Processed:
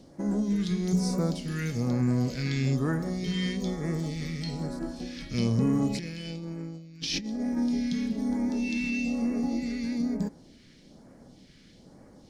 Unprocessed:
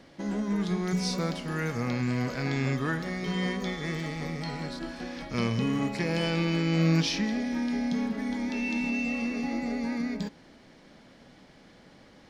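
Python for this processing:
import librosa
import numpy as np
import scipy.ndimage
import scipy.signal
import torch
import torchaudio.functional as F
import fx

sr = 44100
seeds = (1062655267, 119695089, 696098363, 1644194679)

y = fx.over_compress(x, sr, threshold_db=-32.0, ratio=-0.5, at=(5.89, 7.56), fade=0.02)
y = fx.phaser_stages(y, sr, stages=2, low_hz=760.0, high_hz=3000.0, hz=1.1, feedback_pct=35)
y = y * 10.0 ** (2.0 / 20.0)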